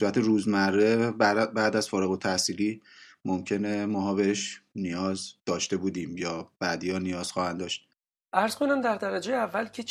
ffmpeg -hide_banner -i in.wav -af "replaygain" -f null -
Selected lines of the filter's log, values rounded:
track_gain = +7.7 dB
track_peak = 0.269